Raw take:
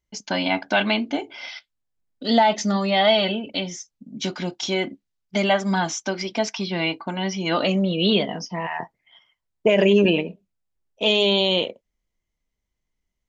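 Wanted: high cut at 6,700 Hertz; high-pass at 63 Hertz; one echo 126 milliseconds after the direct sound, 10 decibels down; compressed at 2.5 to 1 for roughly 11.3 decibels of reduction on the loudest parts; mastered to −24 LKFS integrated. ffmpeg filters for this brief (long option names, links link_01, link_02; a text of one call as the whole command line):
ffmpeg -i in.wav -af "highpass=63,lowpass=6700,acompressor=threshold=-30dB:ratio=2.5,aecho=1:1:126:0.316,volume=6.5dB" out.wav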